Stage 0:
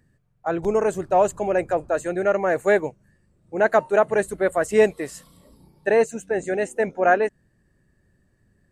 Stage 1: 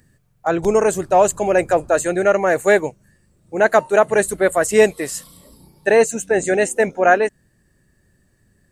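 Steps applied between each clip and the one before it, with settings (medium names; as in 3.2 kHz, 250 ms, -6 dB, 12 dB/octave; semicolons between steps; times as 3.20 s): treble shelf 3.6 kHz +10 dB; in parallel at +3 dB: gain riding 0.5 s; on the sum: trim -3 dB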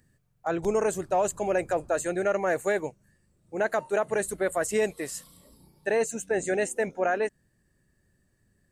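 peak limiter -7.5 dBFS, peak gain reduction 6 dB; trim -9 dB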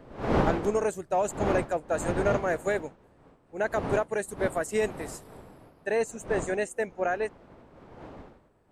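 wind noise 600 Hz -33 dBFS; upward expansion 1.5:1, over -38 dBFS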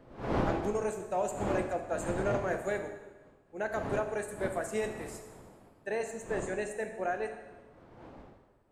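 plate-style reverb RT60 1.2 s, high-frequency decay 0.9×, DRR 5 dB; trim -6.5 dB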